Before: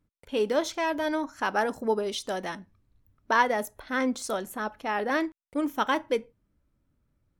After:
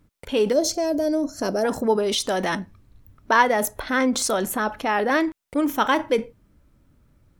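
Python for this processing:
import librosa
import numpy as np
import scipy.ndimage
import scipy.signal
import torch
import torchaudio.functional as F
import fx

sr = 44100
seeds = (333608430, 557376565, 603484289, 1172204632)

p1 = fx.spec_box(x, sr, start_s=0.53, length_s=1.11, low_hz=730.0, high_hz=4100.0, gain_db=-17)
p2 = fx.over_compress(p1, sr, threshold_db=-37.0, ratio=-1.0)
p3 = p1 + F.gain(torch.from_numpy(p2), -3.0).numpy()
y = F.gain(torch.from_numpy(p3), 5.0).numpy()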